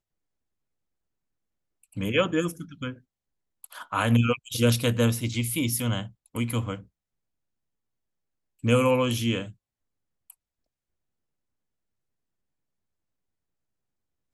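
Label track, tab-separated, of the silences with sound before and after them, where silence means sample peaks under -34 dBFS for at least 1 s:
6.770000	8.640000	silence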